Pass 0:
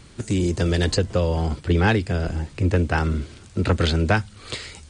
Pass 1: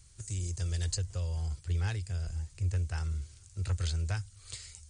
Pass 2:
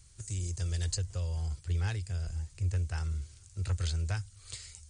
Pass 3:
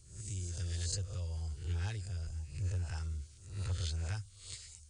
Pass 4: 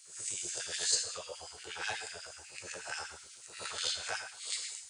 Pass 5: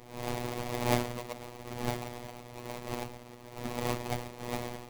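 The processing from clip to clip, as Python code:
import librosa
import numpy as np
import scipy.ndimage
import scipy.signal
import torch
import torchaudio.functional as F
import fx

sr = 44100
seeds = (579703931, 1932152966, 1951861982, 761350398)

y1 = fx.curve_eq(x, sr, hz=(100.0, 240.0, 360.0, 3600.0, 6500.0), db=(0, -23, -18, -8, 5))
y1 = F.gain(torch.from_numpy(y1), -8.5).numpy()
y2 = y1
y3 = fx.spec_swells(y2, sr, rise_s=0.57)
y3 = fx.filter_lfo_notch(y3, sr, shape='sine', hz=9.2, low_hz=610.0, high_hz=2200.0, q=1.6)
y3 = F.gain(torch.from_numpy(y3), -5.5).numpy()
y4 = fx.rev_gated(y3, sr, seeds[0], gate_ms=250, shape='falling', drr_db=3.0)
y4 = fx.filter_lfo_highpass(y4, sr, shape='sine', hz=8.2, low_hz=520.0, high_hz=2300.0, q=1.7)
y4 = F.gain(torch.from_numpy(y4), 8.0).numpy()
y5 = fx.sample_hold(y4, sr, seeds[1], rate_hz=1500.0, jitter_pct=20)
y5 = fx.robotise(y5, sr, hz=121.0)
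y5 = F.gain(torch.from_numpy(y5), 6.0).numpy()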